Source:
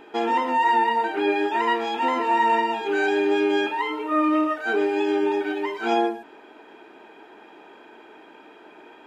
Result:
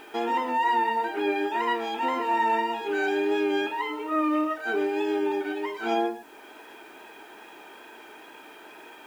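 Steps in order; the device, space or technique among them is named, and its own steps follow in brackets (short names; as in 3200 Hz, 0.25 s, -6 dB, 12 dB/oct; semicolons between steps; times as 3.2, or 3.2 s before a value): noise-reduction cassette on a plain deck (mismatched tape noise reduction encoder only; wow and flutter 25 cents; white noise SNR 34 dB); gain -4 dB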